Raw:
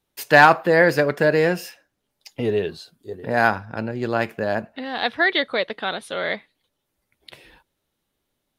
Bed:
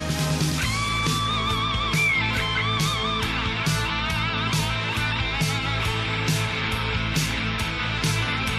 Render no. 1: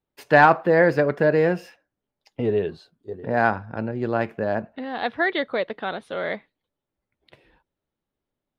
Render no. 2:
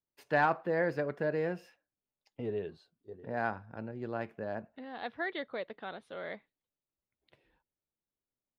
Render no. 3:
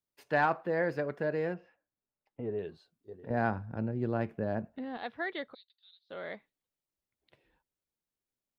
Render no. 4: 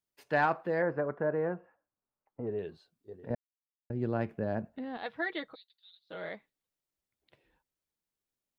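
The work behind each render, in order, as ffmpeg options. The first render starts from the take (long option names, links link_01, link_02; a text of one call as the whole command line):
ffmpeg -i in.wav -af "agate=range=-6dB:threshold=-42dB:ratio=16:detection=peak,lowpass=frequency=1300:poles=1" out.wav
ffmpeg -i in.wav -af "volume=-13.5dB" out.wav
ffmpeg -i in.wav -filter_complex "[0:a]asettb=1/sr,asplit=3[link_01][link_02][link_03];[link_01]atrim=end=1.544[link_04];[link_02]atrim=start=1.54:end=2.59,asetpts=PTS-STARTPTS,afade=type=in:duration=0.004:curve=qsin,afade=type=out:start_time=1.046:duration=0.004:curve=qsin,lowpass=1700[link_05];[link_03]atrim=start=2.586[link_06];[link_04][link_05]acrossfade=duration=0.004:curve1=hsin:curve2=qsin[link_07];[link_07][link_06]acrossfade=duration=0.004:curve1=qsin:curve2=hsin,asettb=1/sr,asplit=3[link_08][link_09][link_10];[link_08]atrim=end=3.304[link_11];[link_09]atrim=start=3.3:end=4.97,asetpts=PTS-STARTPTS,afade=type=in:duration=0.004:curve=qsin,afade=type=out:start_time=1.666:duration=0.004:curve=qsin,lowshelf=frequency=370:gain=11.5[link_12];[link_10]atrim=start=4.966[link_13];[link_11][link_12]acrossfade=duration=0.004:curve1=hsin:curve2=qsin[link_14];[link_14][link_13]acrossfade=duration=0.004:curve1=qsin:curve2=hsin,asplit=3[link_15][link_16][link_17];[link_15]afade=type=out:start_time=5.53:duration=0.02[link_18];[link_16]asuperpass=centerf=4200:order=4:qfactor=3.9,afade=type=in:start_time=5.53:duration=0.02,afade=type=out:start_time=6.09:duration=0.02[link_19];[link_17]afade=type=in:start_time=6.09:duration=0.02[link_20];[link_18][link_19][link_20]amix=inputs=3:normalize=0" out.wav
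ffmpeg -i in.wav -filter_complex "[0:a]asettb=1/sr,asplit=3[link_01][link_02][link_03];[link_01]atrim=end=0.824[link_04];[link_02]atrim=start=0.82:end=2.47,asetpts=PTS-STARTPTS,afade=type=in:duration=0.004:curve=qsin,afade=type=out:start_time=1.646:duration=0.004:curve=qsin,lowpass=frequency=1200:width_type=q:width=1.8[link_05];[link_03]atrim=start=2.466[link_06];[link_04][link_05]acrossfade=duration=0.004:curve1=hsin:curve2=qsin[link_07];[link_07][link_06]acrossfade=duration=0.004:curve1=qsin:curve2=hsin,asettb=1/sr,asplit=3[link_08][link_09][link_10];[link_08]atrim=end=5.054[link_11];[link_09]atrim=start=5.05:end=6.29,asetpts=PTS-STARTPTS,afade=type=in:duration=0.004:curve=qsin,afade=type=out:start_time=1.236:duration=0.004:curve=qsin,aecho=1:1:6.3:0.65,atrim=end_sample=54684[link_12];[link_10]atrim=start=6.286[link_13];[link_11][link_12]acrossfade=duration=0.004:curve1=hsin:curve2=qsin[link_14];[link_14][link_13]acrossfade=duration=0.004:curve1=qsin:curve2=hsin,asplit=3[link_15][link_16][link_17];[link_15]atrim=end=3.35,asetpts=PTS-STARTPTS,afade=type=out:start_time=3.346:duration=0.004:curve=hsin[link_18];[link_16]atrim=start=3.35:end=3.9,asetpts=PTS-STARTPTS,volume=0[link_19];[link_17]atrim=start=3.9,asetpts=PTS-STARTPTS,afade=type=in:duration=0.004:curve=hsin[link_20];[link_18][link_19][link_20]concat=n=3:v=0:a=1" out.wav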